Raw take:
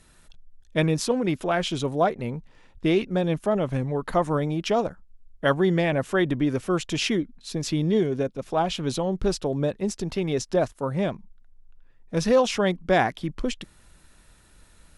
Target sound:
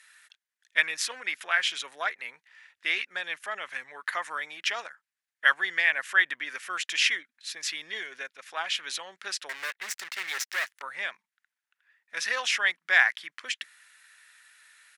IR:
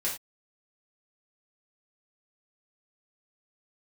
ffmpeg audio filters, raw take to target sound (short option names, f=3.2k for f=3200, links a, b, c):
-filter_complex "[0:a]aresample=32000,aresample=44100,asettb=1/sr,asplit=3[a][b][c];[a]atrim=end=9.494[d];[b]atrim=start=9.49:end=10.82,asetpts=PTS-STARTPTS,afade=t=in:d=0.004:c=qsin,afade=t=out:st=1.326:d=0.004:c=qsin,aeval=exprs='0.0596*(cos(1*acos(clip(val(0)/0.0596,-1,1)))-cos(1*PI/2))+0.0211*(cos(2*acos(clip(val(0)/0.0596,-1,1)))-cos(2*PI/2))+0.000376*(cos(5*acos(clip(val(0)/0.0596,-1,1)))-cos(5*PI/2))+0.00944*(cos(7*acos(clip(val(0)/0.0596,-1,1)))-cos(7*PI/2))':c=same[e];[c]atrim=start=10.816[f];[d][e]acrossfade=d=0.004:c1=hsin:c2=qsin[g];[g][f]acrossfade=d=0.004:c1=qsin:c2=hsin,highpass=f=1.8k:t=q:w=3.2"